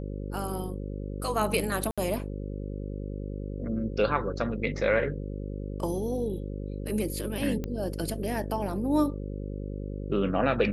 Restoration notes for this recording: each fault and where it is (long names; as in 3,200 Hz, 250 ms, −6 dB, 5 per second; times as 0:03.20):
mains buzz 50 Hz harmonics 11 −35 dBFS
0:01.91–0:01.98: drop-out 66 ms
0:07.64: click −20 dBFS